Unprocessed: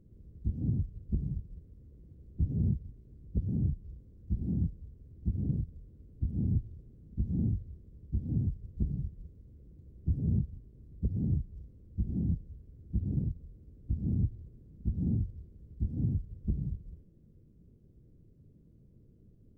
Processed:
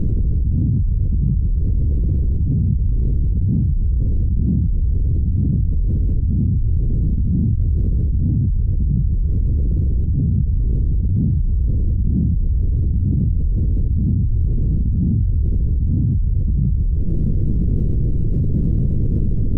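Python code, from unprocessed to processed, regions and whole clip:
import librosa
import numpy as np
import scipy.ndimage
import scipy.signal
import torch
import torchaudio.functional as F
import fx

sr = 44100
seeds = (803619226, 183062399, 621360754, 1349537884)

y = fx.chain(x, sr, fx.highpass(hz=40.0, slope=6),
    fx.over_compress(threshold_db=-45.0, ratio=-0.5), at=(7.55, 8.11))
y = fx.tilt_eq(y, sr, slope=-3.0)
y = fx.env_flatten(y, sr, amount_pct=100)
y = F.gain(torch.from_numpy(y), -3.0).numpy()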